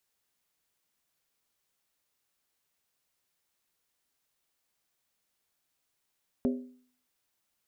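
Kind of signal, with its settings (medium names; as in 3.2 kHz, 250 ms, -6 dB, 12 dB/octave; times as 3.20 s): skin hit, lowest mode 251 Hz, decay 0.53 s, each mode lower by 6 dB, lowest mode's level -22.5 dB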